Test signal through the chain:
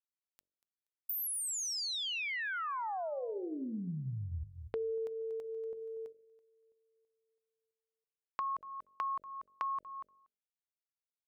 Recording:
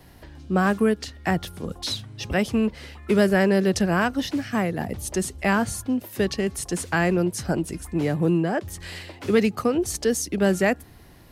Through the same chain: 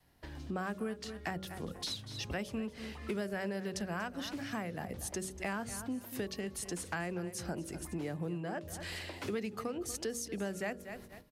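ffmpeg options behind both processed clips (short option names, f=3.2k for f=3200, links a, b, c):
-filter_complex "[0:a]adynamicequalizer=threshold=0.0178:dfrequency=330:dqfactor=1.7:tfrequency=330:tqfactor=1.7:attack=5:release=100:ratio=0.375:range=2.5:mode=cutabove:tftype=bell,asplit=2[a][b];[b]aecho=0:1:238|476:0.158|0.0396[c];[a][c]amix=inputs=2:normalize=0,agate=range=-17dB:threshold=-44dB:ratio=16:detection=peak,lowshelf=f=160:g=-3,bandreject=f=47.13:t=h:w=4,bandreject=f=94.26:t=h:w=4,bandreject=f=141.39:t=h:w=4,bandreject=f=188.52:t=h:w=4,bandreject=f=235.65:t=h:w=4,bandreject=f=282.78:t=h:w=4,bandreject=f=329.91:t=h:w=4,bandreject=f=377.04:t=h:w=4,bandreject=f=424.17:t=h:w=4,bandreject=f=471.3:t=h:w=4,bandreject=f=518.43:t=h:w=4,bandreject=f=565.56:t=h:w=4,bandreject=f=612.69:t=h:w=4,acompressor=threshold=-40dB:ratio=3"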